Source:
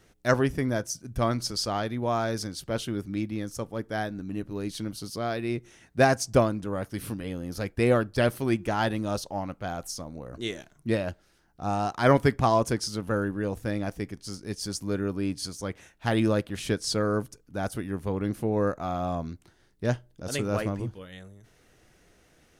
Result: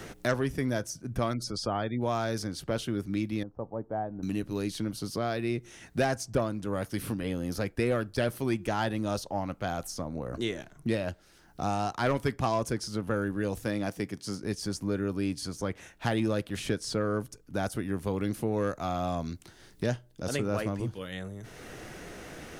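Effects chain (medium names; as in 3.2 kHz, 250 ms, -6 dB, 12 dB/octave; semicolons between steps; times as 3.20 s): 1.33–2.01 s: spectral gate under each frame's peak -30 dB strong; 13.64–14.43 s: high-pass 120 Hz; saturation -14 dBFS, distortion -17 dB; 3.43–4.23 s: four-pole ladder low-pass 1 kHz, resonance 45%; three bands compressed up and down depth 70%; trim -2 dB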